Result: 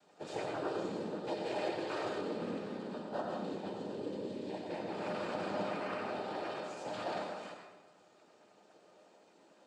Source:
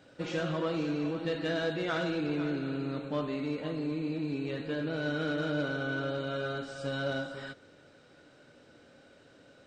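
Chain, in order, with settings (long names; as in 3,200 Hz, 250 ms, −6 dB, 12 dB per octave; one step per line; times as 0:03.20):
high-pass filter 330 Hz 12 dB per octave
parametric band 2,300 Hz −11 dB 1 octave
cochlear-implant simulation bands 8
tuned comb filter 610 Hz, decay 0.22 s, harmonics all, mix 80%
convolution reverb RT60 1.1 s, pre-delay 79 ms, DRR 2.5 dB
level +8.5 dB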